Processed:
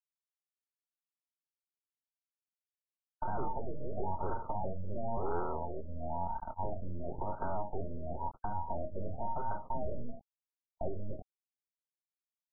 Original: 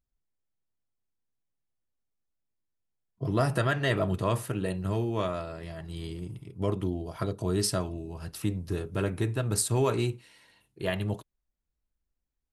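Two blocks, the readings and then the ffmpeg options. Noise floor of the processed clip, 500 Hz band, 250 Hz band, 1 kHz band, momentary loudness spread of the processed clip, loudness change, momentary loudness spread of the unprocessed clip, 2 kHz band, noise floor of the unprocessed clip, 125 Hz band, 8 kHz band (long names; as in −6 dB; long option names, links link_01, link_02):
below −85 dBFS, −8.5 dB, −12.5 dB, 0.0 dB, 6 LU, −9.0 dB, 12 LU, −19.0 dB, −85 dBFS, −13.5 dB, below −40 dB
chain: -filter_complex "[0:a]afftfilt=real='real(if(between(b,1,1008),(2*floor((b-1)/48)+1)*48-b,b),0)':imag='imag(if(between(b,1,1008),(2*floor((b-1)/48)+1)*48-b,b),0)*if(between(b,1,1008),-1,1)':win_size=2048:overlap=0.75,tiltshelf=frequency=1500:gain=7.5,aresample=11025,asoftclip=type=tanh:threshold=-24dB,aresample=44100,acrusher=bits=5:dc=4:mix=0:aa=0.000001,equalizer=frequency=340:width_type=o:width=0.86:gain=-5.5,agate=range=-54dB:threshold=-43dB:ratio=16:detection=peak,acrossover=split=340[link_01][link_02];[link_02]acompressor=threshold=-36dB:ratio=10[link_03];[link_01][link_03]amix=inputs=2:normalize=0,asoftclip=type=hard:threshold=-23.5dB,alimiter=level_in=5dB:limit=-24dB:level=0:latency=1:release=156,volume=-5dB,afftfilt=real='re*lt(b*sr/1024,610*pow(1600/610,0.5+0.5*sin(2*PI*0.97*pts/sr)))':imag='im*lt(b*sr/1024,610*pow(1600/610,0.5+0.5*sin(2*PI*0.97*pts/sr)))':win_size=1024:overlap=0.75,volume=5.5dB"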